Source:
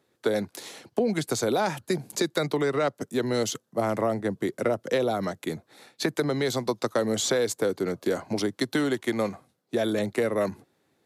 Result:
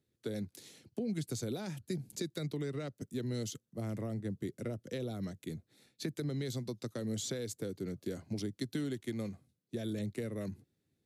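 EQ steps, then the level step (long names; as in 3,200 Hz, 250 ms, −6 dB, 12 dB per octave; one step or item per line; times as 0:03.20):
guitar amp tone stack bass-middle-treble 10-0-1
+9.0 dB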